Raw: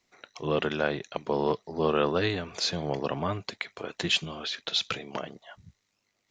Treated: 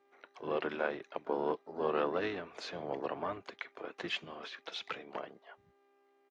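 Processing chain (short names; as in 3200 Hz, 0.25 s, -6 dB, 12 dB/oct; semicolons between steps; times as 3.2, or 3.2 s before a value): buzz 400 Hz, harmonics 31, -64 dBFS -7 dB/oct; three-band isolator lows -16 dB, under 270 Hz, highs -16 dB, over 2700 Hz; harmoniser -7 st -13 dB, -3 st -15 dB, +7 st -17 dB; gain -6 dB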